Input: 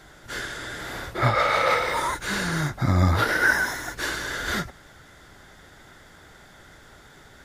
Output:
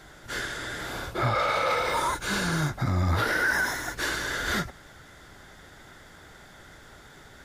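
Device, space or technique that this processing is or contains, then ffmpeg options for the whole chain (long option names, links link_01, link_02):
soft clipper into limiter: -filter_complex "[0:a]asettb=1/sr,asplit=3[link_01][link_02][link_03];[link_01]atrim=end=0.864[link_04];[link_02]atrim=start=0.86:end=2.72,asetpts=PTS-STARTPTS,afade=type=in:duration=0.004:curve=qsin,afade=type=out:start_time=1.856:duration=0.004:curve=qsin,bandreject=frequency=1900:width=6.4[link_05];[link_03]atrim=start=2.716[link_06];[link_04][link_05]acrossfade=duration=0.004:curve1=hsin:curve2=qsin[link_07];[link_07][link_06]acrossfade=duration=0.004:curve1=qsin:curve2=hsin,asoftclip=type=tanh:threshold=-10.5dB,alimiter=limit=-17.5dB:level=0:latency=1:release=37"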